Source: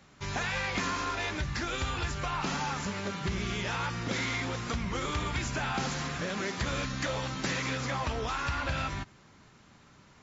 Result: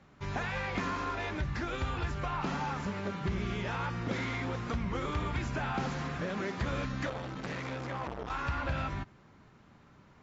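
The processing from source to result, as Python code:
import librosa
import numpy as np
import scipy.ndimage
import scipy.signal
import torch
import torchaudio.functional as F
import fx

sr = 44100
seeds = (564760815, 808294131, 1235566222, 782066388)

y = fx.lowpass(x, sr, hz=1500.0, slope=6)
y = fx.transformer_sat(y, sr, knee_hz=840.0, at=(7.09, 8.3))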